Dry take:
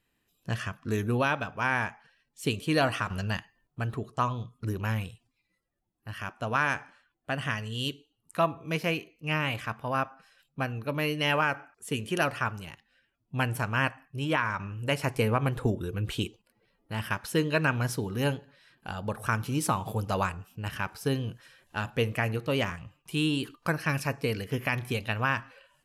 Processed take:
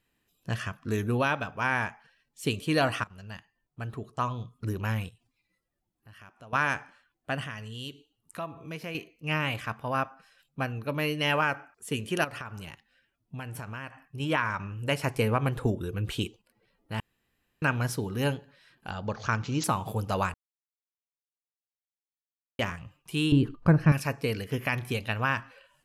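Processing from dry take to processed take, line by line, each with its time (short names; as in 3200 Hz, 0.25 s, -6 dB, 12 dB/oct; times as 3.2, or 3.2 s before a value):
3.04–4.59 fade in, from -19 dB
5.09–6.53 compressor 2:1, threshold -59 dBFS
7.44–8.95 compressor 2:1, threshold -40 dBFS
12.24–14.2 compressor 10:1, threshold -34 dBFS
17–17.62 room tone
18.9–19.64 careless resampling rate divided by 3×, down none, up filtered
20.34–22.59 mute
23.32–23.92 tilt -4.5 dB/oct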